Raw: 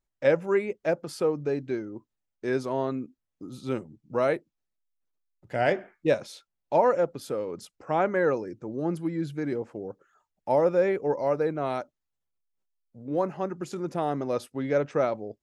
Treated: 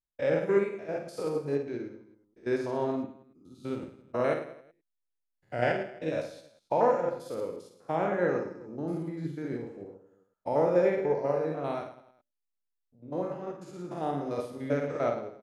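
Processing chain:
spectrum averaged block by block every 100 ms
reverse bouncing-ball delay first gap 50 ms, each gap 1.2×, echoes 5
expander for the loud parts 1.5 to 1, over −44 dBFS

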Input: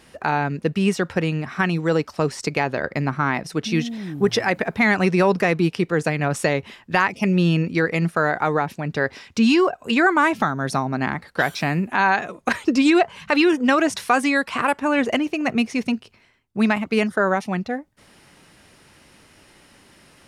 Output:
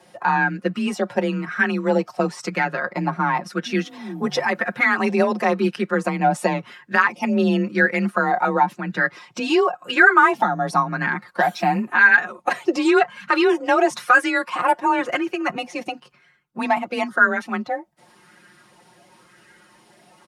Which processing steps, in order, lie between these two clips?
spectral magnitudes quantised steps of 15 dB
frequency shifter +30 Hz
high-pass filter 80 Hz
comb filter 5.6 ms, depth 86%
auto-filter bell 0.95 Hz 710–1,600 Hz +12 dB
level −5.5 dB

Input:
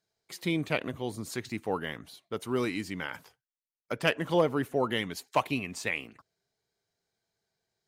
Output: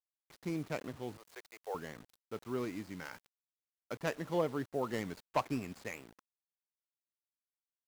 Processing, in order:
running median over 15 samples
0:01.17–0:01.75: Butterworth high-pass 430 Hz 48 dB per octave
0:03.05–0:03.96: high-shelf EQ 4,100 Hz +5.5 dB
0:04.93–0:05.84: leveller curve on the samples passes 1
bit reduction 8 bits
level −7.5 dB

